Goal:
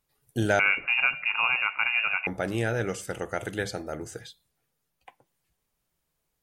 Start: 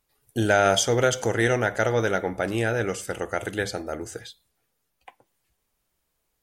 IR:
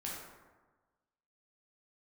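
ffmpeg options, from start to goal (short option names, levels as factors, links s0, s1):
-filter_complex "[0:a]asettb=1/sr,asplit=3[s0][s1][s2];[s0]atrim=end=0.594[s3];[s1]atrim=start=0.59:end=2.27,asetpts=PTS-STARTPTS,afade=t=in:d=0.004:c=qsin,afade=t=out:st=1.676:d=0.004:c=qsin,lowpass=f=2500:t=q:w=0.5098,lowpass=f=2500:t=q:w=0.6013,lowpass=f=2500:t=q:w=0.9,lowpass=f=2500:t=q:w=2.563,afreqshift=-2900[s4];[s2]atrim=start=2.266[s5];[s3][s4]acrossfade=d=0.004:c1=hsin:c2=qsin[s6];[s6][s5]acrossfade=d=0.004:c1=qsin:c2=hsin,equalizer=f=150:t=o:w=0.49:g=7.5,volume=0.668"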